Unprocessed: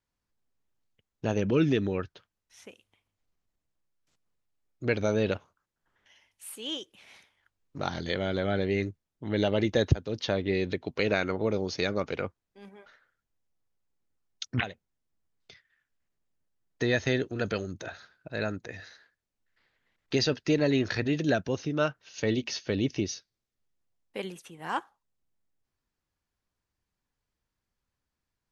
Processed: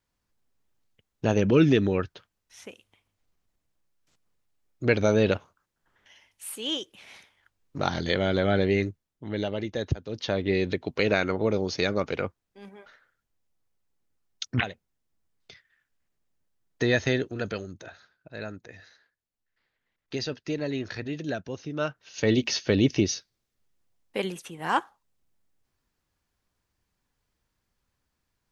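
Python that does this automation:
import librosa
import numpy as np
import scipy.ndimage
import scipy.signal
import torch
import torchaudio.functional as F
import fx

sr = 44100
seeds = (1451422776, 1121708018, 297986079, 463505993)

y = fx.gain(x, sr, db=fx.line((8.67, 5.0), (9.72, -6.5), (10.49, 3.0), (17.0, 3.0), (17.94, -5.5), (21.59, -5.5), (22.41, 6.5)))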